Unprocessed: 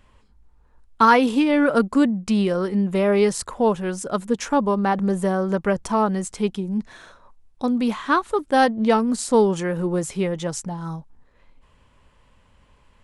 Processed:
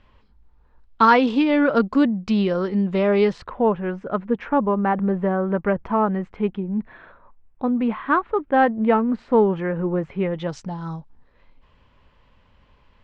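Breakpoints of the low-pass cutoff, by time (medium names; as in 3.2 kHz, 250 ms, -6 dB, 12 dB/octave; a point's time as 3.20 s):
low-pass 24 dB/octave
3.16 s 4.8 kHz
3.63 s 2.4 kHz
10.19 s 2.4 kHz
10.63 s 5 kHz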